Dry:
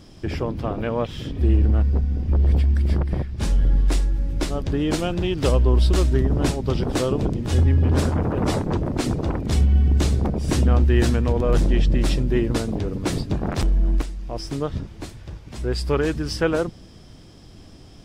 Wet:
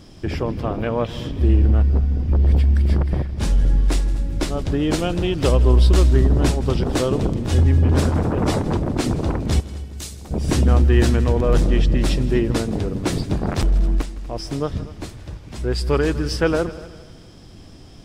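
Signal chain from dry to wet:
0:09.60–0:10.31: first-order pre-emphasis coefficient 0.9
echo machine with several playback heads 81 ms, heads second and third, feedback 41%, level −18.5 dB
level +2 dB

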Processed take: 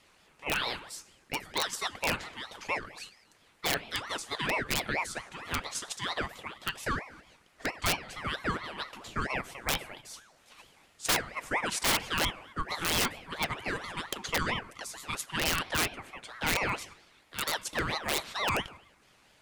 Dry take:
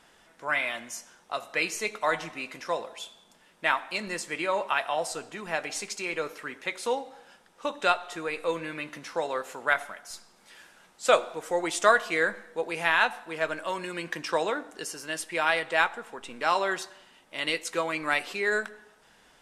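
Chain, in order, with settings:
frequency shifter +58 Hz
in parallel at −1 dB: output level in coarse steps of 17 dB
on the sum: wrap-around overflow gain 14 dB
ring modulator whose carrier an LFO sweeps 1,100 Hz, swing 50%, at 4.4 Hz
level −3 dB

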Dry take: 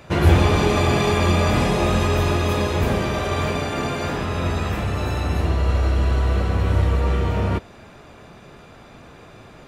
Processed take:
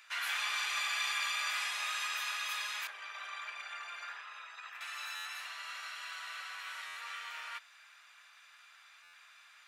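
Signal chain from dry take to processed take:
0:02.87–0:04.81: spectral envelope exaggerated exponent 1.5
high-pass filter 1,400 Hz 24 dB per octave
buffer that repeats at 0:05.15/0:06.86/0:09.03, samples 512, times 8
level −6.5 dB

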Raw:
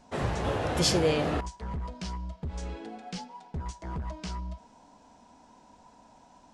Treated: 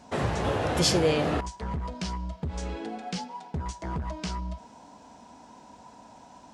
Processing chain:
high-pass filter 60 Hz
in parallel at +0.5 dB: downward compressor, threshold −37 dBFS, peak gain reduction 15.5 dB

